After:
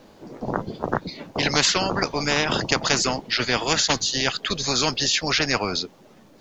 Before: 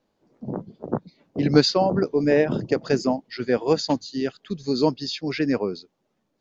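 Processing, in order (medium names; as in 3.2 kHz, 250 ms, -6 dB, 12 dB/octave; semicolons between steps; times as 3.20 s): spectrum-flattening compressor 4:1; trim -1.5 dB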